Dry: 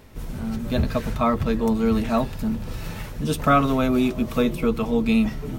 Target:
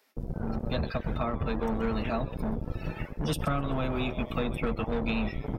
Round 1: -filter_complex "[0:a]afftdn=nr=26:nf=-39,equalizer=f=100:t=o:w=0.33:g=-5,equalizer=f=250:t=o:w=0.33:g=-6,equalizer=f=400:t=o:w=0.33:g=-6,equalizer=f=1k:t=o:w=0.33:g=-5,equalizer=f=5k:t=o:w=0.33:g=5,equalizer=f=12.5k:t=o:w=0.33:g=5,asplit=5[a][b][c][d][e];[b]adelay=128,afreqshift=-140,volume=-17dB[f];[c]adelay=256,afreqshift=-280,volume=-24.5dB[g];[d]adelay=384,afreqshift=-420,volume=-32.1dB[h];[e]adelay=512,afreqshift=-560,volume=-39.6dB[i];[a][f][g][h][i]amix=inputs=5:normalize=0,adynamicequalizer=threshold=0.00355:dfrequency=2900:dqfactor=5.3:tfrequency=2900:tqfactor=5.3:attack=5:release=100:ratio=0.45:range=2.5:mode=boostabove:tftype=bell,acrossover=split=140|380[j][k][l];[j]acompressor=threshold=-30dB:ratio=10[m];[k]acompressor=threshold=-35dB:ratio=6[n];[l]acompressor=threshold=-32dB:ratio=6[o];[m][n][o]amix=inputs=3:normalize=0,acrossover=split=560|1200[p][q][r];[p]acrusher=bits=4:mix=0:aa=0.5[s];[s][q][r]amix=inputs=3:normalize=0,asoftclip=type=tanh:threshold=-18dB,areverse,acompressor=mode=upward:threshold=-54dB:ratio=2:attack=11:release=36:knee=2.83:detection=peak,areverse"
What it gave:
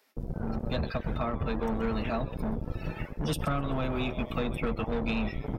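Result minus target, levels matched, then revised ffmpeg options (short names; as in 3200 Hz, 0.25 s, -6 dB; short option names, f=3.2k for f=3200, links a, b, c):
soft clip: distortion +14 dB
-filter_complex "[0:a]afftdn=nr=26:nf=-39,equalizer=f=100:t=o:w=0.33:g=-5,equalizer=f=250:t=o:w=0.33:g=-6,equalizer=f=400:t=o:w=0.33:g=-6,equalizer=f=1k:t=o:w=0.33:g=-5,equalizer=f=5k:t=o:w=0.33:g=5,equalizer=f=12.5k:t=o:w=0.33:g=5,asplit=5[a][b][c][d][e];[b]adelay=128,afreqshift=-140,volume=-17dB[f];[c]adelay=256,afreqshift=-280,volume=-24.5dB[g];[d]adelay=384,afreqshift=-420,volume=-32.1dB[h];[e]adelay=512,afreqshift=-560,volume=-39.6dB[i];[a][f][g][h][i]amix=inputs=5:normalize=0,adynamicequalizer=threshold=0.00355:dfrequency=2900:dqfactor=5.3:tfrequency=2900:tqfactor=5.3:attack=5:release=100:ratio=0.45:range=2.5:mode=boostabove:tftype=bell,acrossover=split=140|380[j][k][l];[j]acompressor=threshold=-30dB:ratio=10[m];[k]acompressor=threshold=-35dB:ratio=6[n];[l]acompressor=threshold=-32dB:ratio=6[o];[m][n][o]amix=inputs=3:normalize=0,acrossover=split=560|1200[p][q][r];[p]acrusher=bits=4:mix=0:aa=0.5[s];[s][q][r]amix=inputs=3:normalize=0,asoftclip=type=tanh:threshold=-10.5dB,areverse,acompressor=mode=upward:threshold=-54dB:ratio=2:attack=11:release=36:knee=2.83:detection=peak,areverse"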